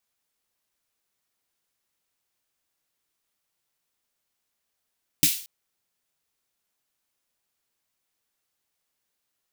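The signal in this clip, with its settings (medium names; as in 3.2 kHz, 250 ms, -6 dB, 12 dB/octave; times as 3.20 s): snare drum length 0.23 s, tones 160 Hz, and 290 Hz, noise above 2.5 kHz, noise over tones 5.5 dB, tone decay 0.11 s, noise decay 0.44 s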